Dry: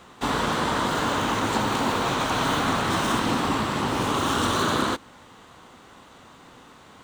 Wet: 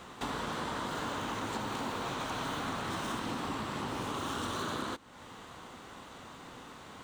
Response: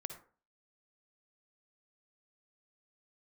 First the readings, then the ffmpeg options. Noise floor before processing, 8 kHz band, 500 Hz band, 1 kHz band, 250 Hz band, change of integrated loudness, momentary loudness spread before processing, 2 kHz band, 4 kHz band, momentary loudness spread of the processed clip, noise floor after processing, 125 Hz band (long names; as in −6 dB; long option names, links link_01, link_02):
−50 dBFS, −12.0 dB, −12.0 dB, −12.0 dB, −12.0 dB, −12.0 dB, 2 LU, −12.0 dB, −12.0 dB, 13 LU, −50 dBFS, −12.0 dB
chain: -af "acompressor=threshold=-40dB:ratio=2.5"